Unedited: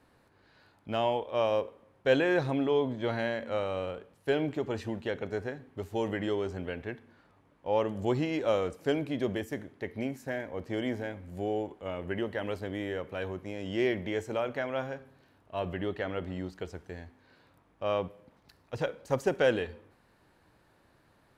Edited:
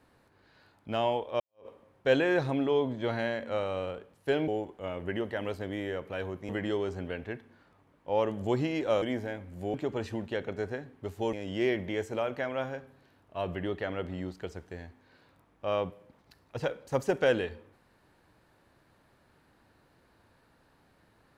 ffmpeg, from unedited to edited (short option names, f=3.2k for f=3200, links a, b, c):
-filter_complex "[0:a]asplit=7[a][b][c][d][e][f][g];[a]atrim=end=1.4,asetpts=PTS-STARTPTS,afade=t=out:st=1.396:d=0.004:c=hsin[h];[b]atrim=start=1.4:end=4.482,asetpts=PTS-STARTPTS,afade=t=in:d=0.27:c=exp[i];[c]atrim=start=11.498:end=13.512[j];[d]atrim=start=6.068:end=8.602[k];[e]atrim=start=10.778:end=11.502[l];[f]atrim=start=4.478:end=6.072[m];[g]atrim=start=13.508[n];[h][i]concat=n=2:v=0:a=1[o];[o][j]acrossfade=d=0.004:c1=hsin:c2=hsin[p];[p][k]acrossfade=d=0.004:c1=hsin:c2=hsin[q];[q][l]acrossfade=d=0.004:c1=hsin:c2=hsin[r];[r][m]acrossfade=d=0.004:c1=hsin:c2=hsin[s];[s][n]acrossfade=d=0.004:c1=hsin:c2=hsin"